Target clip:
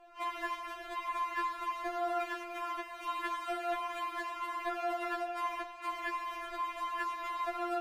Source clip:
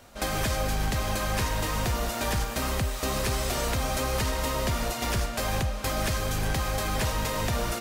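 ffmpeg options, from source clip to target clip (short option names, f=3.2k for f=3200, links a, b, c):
-filter_complex "[0:a]acrossover=split=420 2500:gain=0.224 1 0.0708[a][b][c];[a][b][c]amix=inputs=3:normalize=0,afftfilt=real='re*4*eq(mod(b,16),0)':imag='im*4*eq(mod(b,16),0)':win_size=2048:overlap=0.75"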